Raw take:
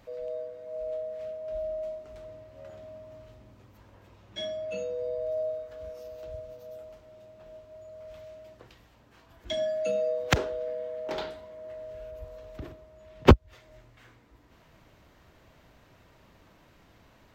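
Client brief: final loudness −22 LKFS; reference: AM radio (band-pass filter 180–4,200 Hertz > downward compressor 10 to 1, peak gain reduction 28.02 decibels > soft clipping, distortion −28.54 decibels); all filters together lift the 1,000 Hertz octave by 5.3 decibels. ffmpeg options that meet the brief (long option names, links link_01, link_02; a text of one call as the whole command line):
ffmpeg -i in.wav -af "highpass=180,lowpass=4200,equalizer=frequency=1000:width_type=o:gain=6.5,acompressor=threshold=-38dB:ratio=10,asoftclip=threshold=-27.5dB,volume=21dB" out.wav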